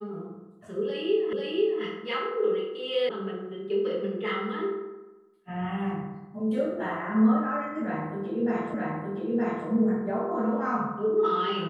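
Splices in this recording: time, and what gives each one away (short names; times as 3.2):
1.33 repeat of the last 0.49 s
3.09 sound cut off
8.74 repeat of the last 0.92 s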